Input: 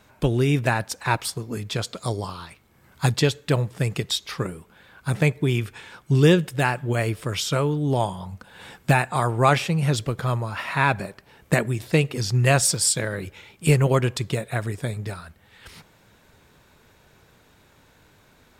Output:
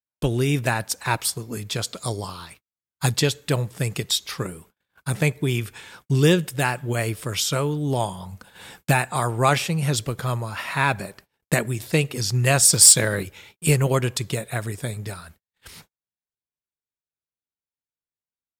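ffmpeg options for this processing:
ffmpeg -i in.wav -filter_complex "[0:a]agate=range=-48dB:threshold=-47dB:ratio=16:detection=peak,aemphasis=mode=production:type=cd,asettb=1/sr,asplit=3[link_01][link_02][link_03];[link_01]atrim=end=12.734[link_04];[link_02]atrim=start=12.73:end=13.23,asetpts=PTS-STARTPTS,afade=type=in:duration=0.004:curve=qsin,afade=type=out:start_time=0.496:duration=0.004:curve=qsin,acontrast=48[link_05];[link_03]atrim=start=13.226[link_06];[link_04][link_05]acrossfade=duration=0.004:curve1=hsin:curve2=qsin[link_07];[link_07][link_06]acrossfade=duration=0.004:curve1=qsin:curve2=hsin,volume=-1dB" out.wav

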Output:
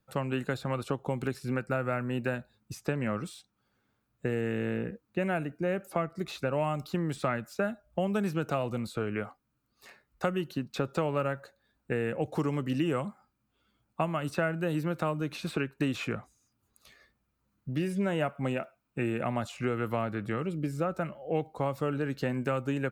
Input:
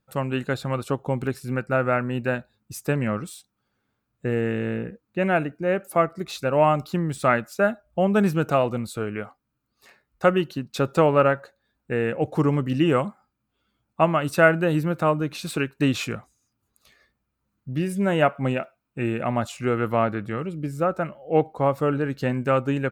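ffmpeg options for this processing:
ffmpeg -i in.wav -filter_complex "[0:a]acrossover=split=220|2700|6000[link_01][link_02][link_03][link_04];[link_01]acompressor=threshold=-36dB:ratio=4[link_05];[link_02]acompressor=threshold=-30dB:ratio=4[link_06];[link_03]acompressor=threshold=-49dB:ratio=4[link_07];[link_04]acompressor=threshold=-56dB:ratio=4[link_08];[link_05][link_06][link_07][link_08]amix=inputs=4:normalize=0" out.wav

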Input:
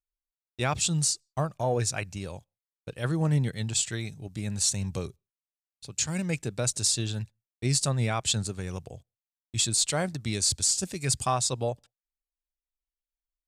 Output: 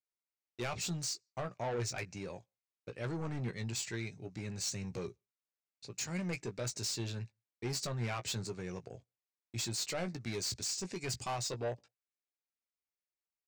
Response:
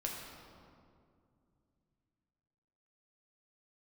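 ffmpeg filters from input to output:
-filter_complex "[0:a]highpass=120,equalizer=frequency=150:width_type=q:width=4:gain=-4,equalizer=frequency=390:width_type=q:width=4:gain=4,equalizer=frequency=2200:width_type=q:width=4:gain=5,equalizer=frequency=3300:width_type=q:width=4:gain=-8,lowpass=frequency=6600:width=0.5412,lowpass=frequency=6600:width=1.3066,asoftclip=type=tanh:threshold=-29dB,asplit=2[link_01][link_02];[link_02]adelay=17,volume=-9dB[link_03];[link_01][link_03]amix=inputs=2:normalize=0,volume=-4dB"

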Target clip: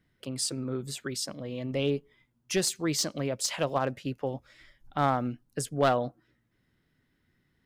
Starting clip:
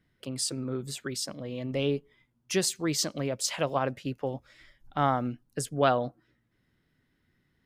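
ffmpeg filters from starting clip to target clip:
ffmpeg -i in.wav -af "aeval=exprs='clip(val(0),-1,0.0841)':channel_layout=same" out.wav

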